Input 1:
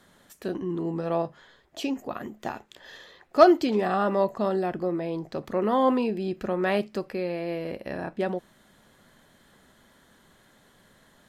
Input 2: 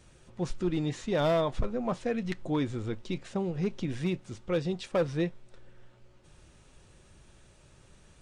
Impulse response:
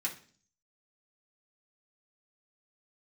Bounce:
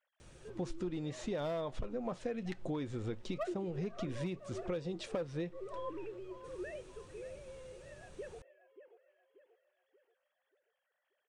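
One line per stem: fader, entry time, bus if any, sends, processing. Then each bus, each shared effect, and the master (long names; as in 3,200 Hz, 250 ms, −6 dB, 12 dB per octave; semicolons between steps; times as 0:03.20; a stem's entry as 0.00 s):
−16.0 dB, 0.00 s, send −13.5 dB, echo send −12.5 dB, three sine waves on the formant tracks; asymmetric clip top −6.5 dBFS
0.0 dB, 0.20 s, no send, no echo send, parametric band 490 Hz +3.5 dB 0.77 octaves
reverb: on, RT60 0.45 s, pre-delay 3 ms
echo: repeating echo 584 ms, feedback 44%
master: downward compressor 8 to 1, threshold −35 dBFS, peak gain reduction 14.5 dB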